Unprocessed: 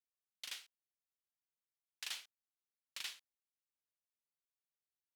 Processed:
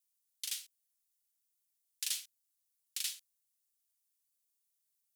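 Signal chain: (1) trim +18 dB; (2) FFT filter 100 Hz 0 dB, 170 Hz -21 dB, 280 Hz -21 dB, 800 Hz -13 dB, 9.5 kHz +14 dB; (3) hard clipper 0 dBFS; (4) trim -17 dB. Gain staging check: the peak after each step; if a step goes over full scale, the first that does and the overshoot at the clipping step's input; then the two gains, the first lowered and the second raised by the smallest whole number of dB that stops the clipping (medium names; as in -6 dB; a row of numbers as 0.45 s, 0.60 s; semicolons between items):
-11.5 dBFS, -3.5 dBFS, -3.5 dBFS, -20.5 dBFS; nothing clips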